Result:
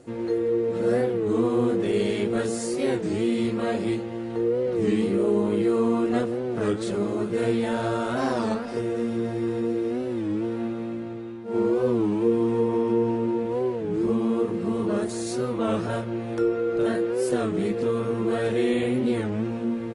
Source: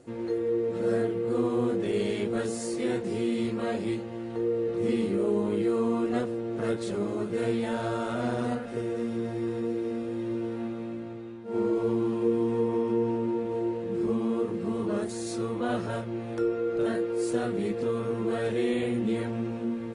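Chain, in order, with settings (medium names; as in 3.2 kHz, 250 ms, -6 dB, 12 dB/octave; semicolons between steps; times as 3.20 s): 8.17–8.79 s: graphic EQ with 31 bands 125 Hz -8 dB, 1 kHz +7 dB, 5 kHz +11 dB; speakerphone echo 180 ms, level -17 dB; warped record 33 1/3 rpm, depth 160 cents; trim +4 dB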